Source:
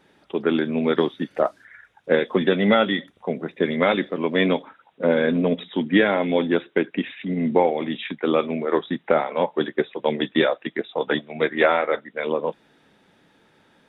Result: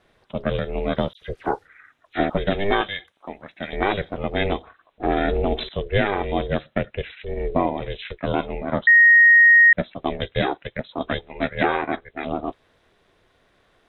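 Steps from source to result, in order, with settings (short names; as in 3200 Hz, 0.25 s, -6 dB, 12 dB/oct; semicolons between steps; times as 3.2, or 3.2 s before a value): 1.13–2.3 dispersion lows, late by 84 ms, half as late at 2100 Hz; 2.81–3.73 HPF 620 Hz 12 dB/oct; ring modulator 200 Hz; 5.08–5.69 fast leveller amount 50%; 8.87–9.73 bleep 1870 Hz -8.5 dBFS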